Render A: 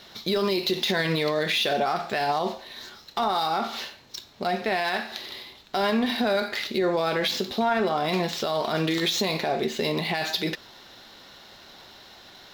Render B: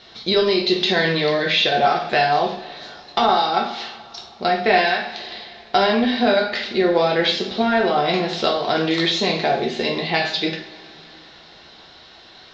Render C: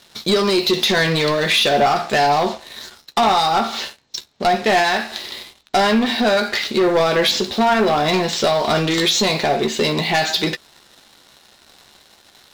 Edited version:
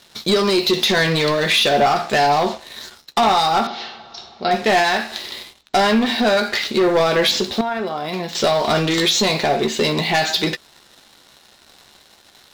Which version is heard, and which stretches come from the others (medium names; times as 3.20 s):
C
3.67–4.51 s: from B
7.61–8.35 s: from A